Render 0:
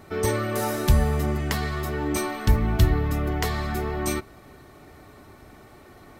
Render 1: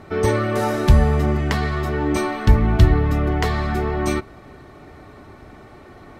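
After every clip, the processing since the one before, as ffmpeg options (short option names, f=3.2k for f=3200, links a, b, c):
-af "aemphasis=mode=reproduction:type=50fm,volume=5.5dB"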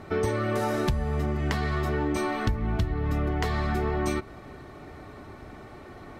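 -af "acompressor=threshold=-21dB:ratio=12,volume=-1.5dB"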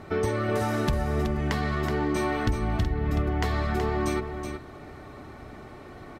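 -af "aecho=1:1:374:0.422"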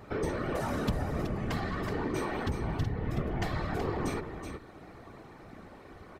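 -af "afftfilt=real='hypot(re,im)*cos(2*PI*random(0))':imag='hypot(re,im)*sin(2*PI*random(1))':win_size=512:overlap=0.75"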